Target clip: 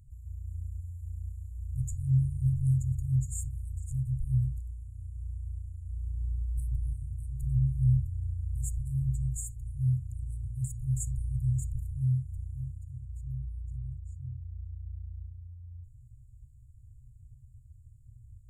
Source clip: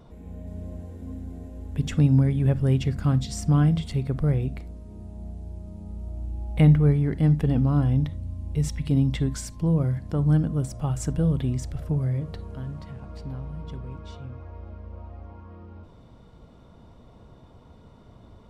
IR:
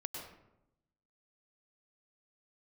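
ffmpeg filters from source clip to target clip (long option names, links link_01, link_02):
-af "afftfilt=real='re*(1-between(b*sr/4096,130,6700))':imag='im*(1-between(b*sr/4096,130,6700))':win_size=4096:overlap=0.75"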